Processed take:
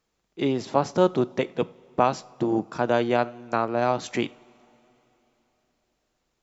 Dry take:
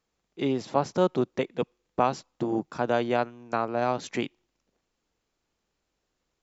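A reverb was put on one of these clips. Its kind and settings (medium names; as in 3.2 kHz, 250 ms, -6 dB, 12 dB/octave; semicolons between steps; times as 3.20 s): two-slope reverb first 0.36 s, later 3.6 s, from -19 dB, DRR 15.5 dB; trim +3 dB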